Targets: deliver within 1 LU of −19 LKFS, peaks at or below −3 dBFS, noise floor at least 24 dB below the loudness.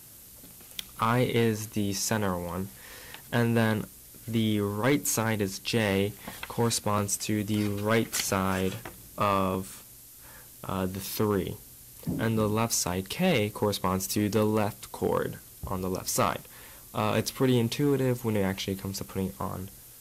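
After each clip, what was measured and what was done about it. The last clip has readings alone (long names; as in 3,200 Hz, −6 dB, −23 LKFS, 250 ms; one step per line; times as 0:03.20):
share of clipped samples 0.4%; peaks flattened at −17.0 dBFS; background noise floor −50 dBFS; target noise floor −53 dBFS; integrated loudness −28.5 LKFS; sample peak −17.0 dBFS; target loudness −19.0 LKFS
→ clipped peaks rebuilt −17 dBFS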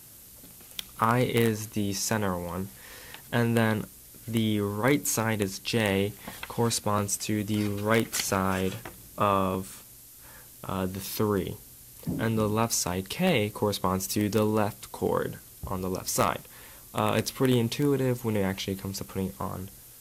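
share of clipped samples 0.0%; background noise floor −50 dBFS; target noise floor −52 dBFS
→ broadband denoise 6 dB, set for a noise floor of −50 dBFS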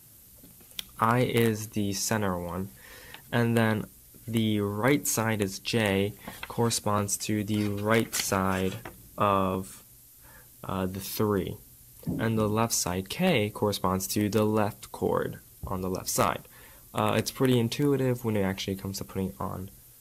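background noise floor −54 dBFS; integrated loudness −28.0 LKFS; sample peak −8.0 dBFS; target loudness −19.0 LKFS
→ level +9 dB
brickwall limiter −3 dBFS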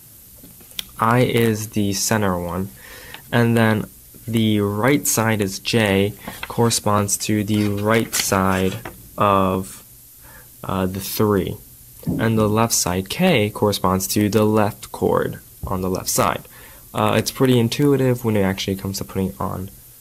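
integrated loudness −19.5 LKFS; sample peak −3.0 dBFS; background noise floor −45 dBFS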